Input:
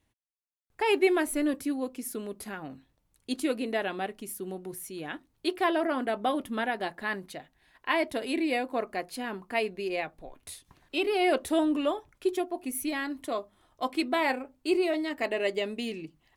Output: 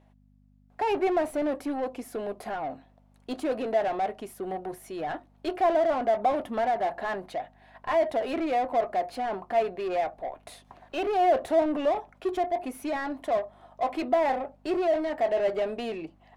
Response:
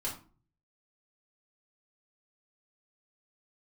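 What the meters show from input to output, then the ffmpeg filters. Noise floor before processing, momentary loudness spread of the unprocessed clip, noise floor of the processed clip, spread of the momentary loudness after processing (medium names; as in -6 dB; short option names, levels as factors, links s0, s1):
-74 dBFS, 13 LU, -61 dBFS, 12 LU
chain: -filter_complex "[0:a]equalizer=f=690:t=o:w=0.71:g=14,aeval=exprs='val(0)+0.00178*(sin(2*PI*50*n/s)+sin(2*PI*2*50*n/s)/2+sin(2*PI*3*50*n/s)/3+sin(2*PI*4*50*n/s)/4+sin(2*PI*5*50*n/s)/5)':c=same,asplit=2[s0][s1];[s1]highpass=f=720:p=1,volume=6.31,asoftclip=type=tanh:threshold=0.0708[s2];[s0][s2]amix=inputs=2:normalize=0,lowpass=f=1300:p=1,volume=0.501,volume=0.891"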